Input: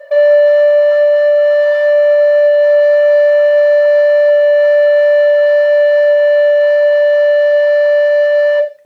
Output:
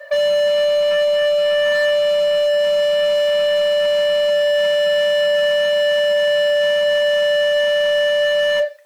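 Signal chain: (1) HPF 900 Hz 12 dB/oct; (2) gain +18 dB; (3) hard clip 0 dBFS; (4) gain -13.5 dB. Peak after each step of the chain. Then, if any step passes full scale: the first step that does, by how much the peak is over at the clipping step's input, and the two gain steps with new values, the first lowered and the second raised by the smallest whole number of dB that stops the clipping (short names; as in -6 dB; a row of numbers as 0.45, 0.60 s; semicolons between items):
-9.0, +9.0, 0.0, -13.5 dBFS; step 2, 9.0 dB; step 2 +9 dB, step 4 -4.5 dB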